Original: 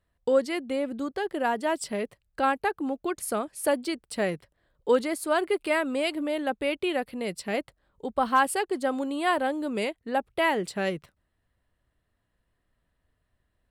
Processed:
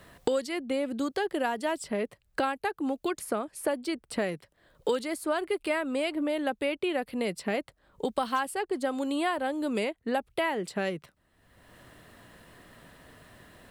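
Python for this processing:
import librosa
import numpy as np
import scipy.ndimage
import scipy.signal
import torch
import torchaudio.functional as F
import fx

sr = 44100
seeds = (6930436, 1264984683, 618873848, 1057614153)

y = fx.band_squash(x, sr, depth_pct=100)
y = y * librosa.db_to_amplitude(-3.5)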